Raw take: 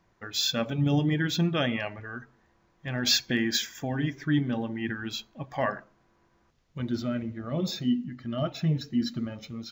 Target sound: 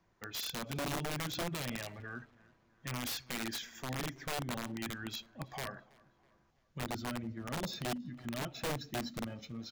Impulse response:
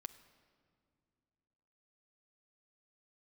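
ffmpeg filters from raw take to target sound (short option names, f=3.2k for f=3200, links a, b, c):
-filter_complex "[0:a]acrossover=split=160|5400[a][b][c];[a]acompressor=threshold=-33dB:ratio=4[d];[b]acompressor=threshold=-33dB:ratio=4[e];[c]acompressor=threshold=-45dB:ratio=4[f];[d][e][f]amix=inputs=3:normalize=0,aeval=exprs='(mod(20*val(0)+1,2)-1)/20':c=same,asplit=2[g][h];[h]adelay=326,lowpass=f=3.8k:p=1,volume=-23.5dB,asplit=2[i][j];[j]adelay=326,lowpass=f=3.8k:p=1,volume=0.49,asplit=2[k][l];[l]adelay=326,lowpass=f=3.8k:p=1,volume=0.49[m];[g][i][k][m]amix=inputs=4:normalize=0,volume=-5.5dB"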